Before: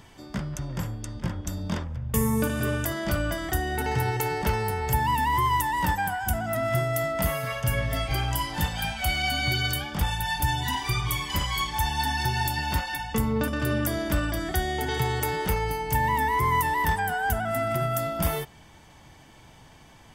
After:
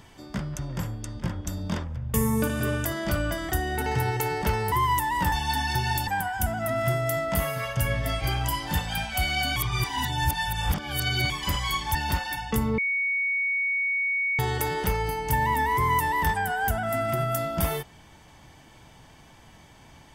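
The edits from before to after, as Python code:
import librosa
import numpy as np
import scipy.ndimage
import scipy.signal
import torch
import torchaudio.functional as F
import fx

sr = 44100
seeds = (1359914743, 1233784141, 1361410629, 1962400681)

y = fx.edit(x, sr, fx.cut(start_s=4.72, length_s=0.62),
    fx.reverse_span(start_s=9.43, length_s=1.74),
    fx.move(start_s=11.82, length_s=0.75, to_s=5.94),
    fx.bleep(start_s=13.4, length_s=1.61, hz=2230.0, db=-23.0), tone=tone)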